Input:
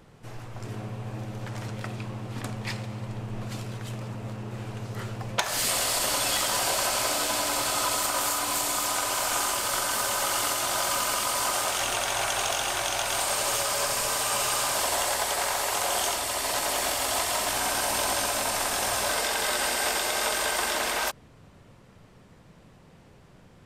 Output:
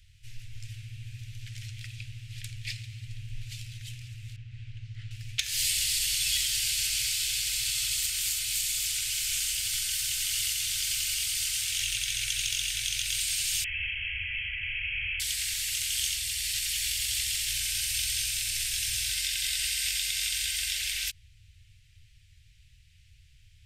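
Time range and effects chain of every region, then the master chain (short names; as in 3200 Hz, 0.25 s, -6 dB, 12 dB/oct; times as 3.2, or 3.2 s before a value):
4.36–5.11 tape spacing loss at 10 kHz 22 dB + Doppler distortion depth 0.18 ms
13.64–15.2 infinite clipping + inverted band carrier 3200 Hz
whole clip: inverse Chebyshev band-stop 210–1100 Hz, stop band 50 dB; high shelf 4200 Hz -5.5 dB; gain +3.5 dB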